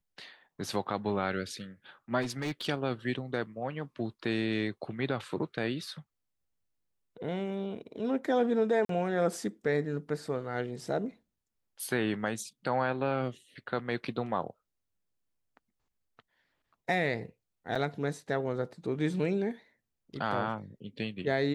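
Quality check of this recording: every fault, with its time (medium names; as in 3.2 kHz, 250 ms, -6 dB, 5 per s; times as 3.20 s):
2.21–2.69 s: clipped -29.5 dBFS
8.85–8.89 s: dropout 43 ms
17.75–17.76 s: dropout 5.2 ms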